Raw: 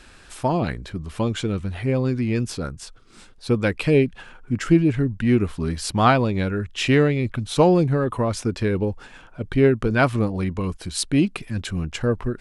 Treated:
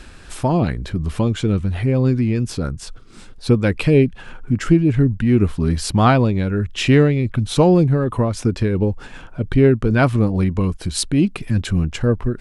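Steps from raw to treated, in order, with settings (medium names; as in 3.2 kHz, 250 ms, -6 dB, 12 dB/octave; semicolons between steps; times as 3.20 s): bass shelf 340 Hz +7 dB; in parallel at +1.5 dB: compression, threshold -25 dBFS, peak gain reduction 17.5 dB; on the sum: random flutter of the level, depth 50%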